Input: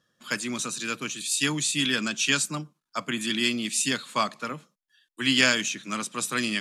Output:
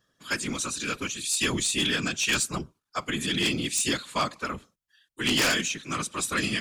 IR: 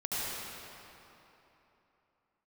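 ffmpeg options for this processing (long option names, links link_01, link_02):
-af "afftfilt=real='hypot(re,im)*cos(2*PI*random(0))':imag='hypot(re,im)*sin(2*PI*random(1))':win_size=512:overlap=0.75,aeval=exprs='0.2*(cos(1*acos(clip(val(0)/0.2,-1,1)))-cos(1*PI/2))+0.0398*(cos(3*acos(clip(val(0)/0.2,-1,1)))-cos(3*PI/2))+0.00398*(cos(5*acos(clip(val(0)/0.2,-1,1)))-cos(5*PI/2))':channel_layout=same,aeval=exprs='0.251*sin(PI/2*5.62*val(0)/0.251)':channel_layout=same,volume=-6.5dB"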